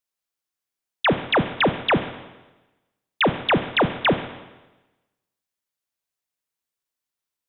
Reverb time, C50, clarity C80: 1.1 s, 11.0 dB, 13.0 dB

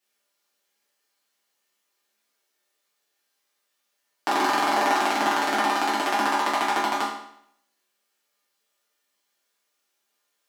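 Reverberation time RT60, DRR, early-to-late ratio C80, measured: 0.70 s, -9.5 dB, 6.0 dB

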